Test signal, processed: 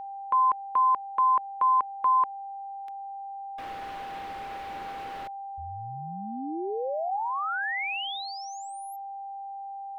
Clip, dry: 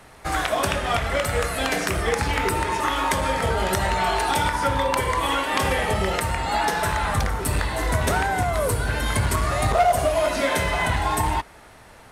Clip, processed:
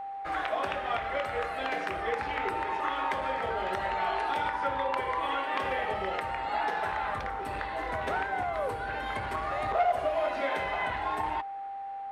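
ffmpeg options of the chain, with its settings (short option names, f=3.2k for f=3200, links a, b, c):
-filter_complex "[0:a]acrossover=split=300 3400:gain=0.224 1 0.0794[a][b][c];[a][b][c]amix=inputs=3:normalize=0,aeval=exprs='val(0)+0.0398*sin(2*PI*790*n/s)':c=same,volume=-7.5dB"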